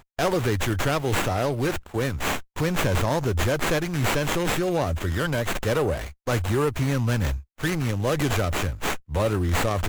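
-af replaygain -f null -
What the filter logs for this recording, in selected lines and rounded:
track_gain = +7.3 dB
track_peak = 0.163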